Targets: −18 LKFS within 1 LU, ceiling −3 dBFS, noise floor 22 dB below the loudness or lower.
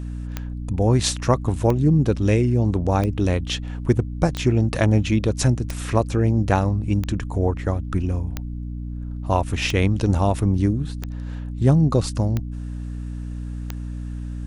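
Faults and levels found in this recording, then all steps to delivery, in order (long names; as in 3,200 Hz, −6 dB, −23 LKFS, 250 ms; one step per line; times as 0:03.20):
number of clicks 11; mains hum 60 Hz; hum harmonics up to 300 Hz; level of the hum −27 dBFS; integrated loudness −21.5 LKFS; sample peak −4.0 dBFS; target loudness −18.0 LKFS
→ click removal
mains-hum notches 60/120/180/240/300 Hz
level +3.5 dB
brickwall limiter −3 dBFS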